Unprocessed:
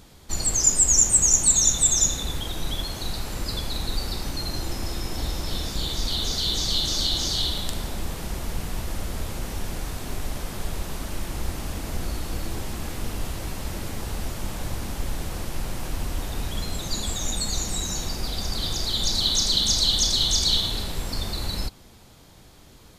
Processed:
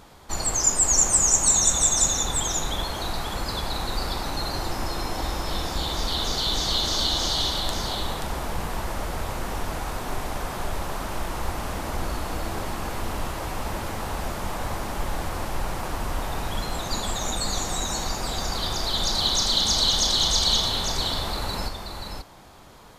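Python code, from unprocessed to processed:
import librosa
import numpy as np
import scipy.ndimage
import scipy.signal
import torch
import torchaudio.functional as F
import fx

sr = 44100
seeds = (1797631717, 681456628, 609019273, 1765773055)

p1 = fx.peak_eq(x, sr, hz=960.0, db=11.0, octaves=2.1)
p2 = p1 + fx.echo_single(p1, sr, ms=530, db=-6.0, dry=0)
y = p2 * librosa.db_to_amplitude(-2.5)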